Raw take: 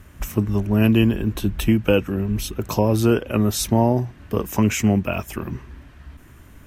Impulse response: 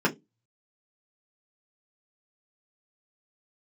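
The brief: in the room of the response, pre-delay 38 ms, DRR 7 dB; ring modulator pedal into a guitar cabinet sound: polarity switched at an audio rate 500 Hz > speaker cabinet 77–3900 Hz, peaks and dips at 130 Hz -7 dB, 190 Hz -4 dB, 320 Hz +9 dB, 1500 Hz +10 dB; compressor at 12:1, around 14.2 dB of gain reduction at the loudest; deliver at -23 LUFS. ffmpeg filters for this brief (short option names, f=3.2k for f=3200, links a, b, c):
-filter_complex "[0:a]acompressor=threshold=-26dB:ratio=12,asplit=2[a][b];[1:a]atrim=start_sample=2205,adelay=38[c];[b][c]afir=irnorm=-1:irlink=0,volume=-20.5dB[d];[a][d]amix=inputs=2:normalize=0,aeval=exprs='val(0)*sgn(sin(2*PI*500*n/s))':c=same,highpass=77,equalizer=f=130:t=q:w=4:g=-7,equalizer=f=190:t=q:w=4:g=-4,equalizer=f=320:t=q:w=4:g=9,equalizer=f=1.5k:t=q:w=4:g=10,lowpass=f=3.9k:w=0.5412,lowpass=f=3.9k:w=1.3066,volume=4.5dB"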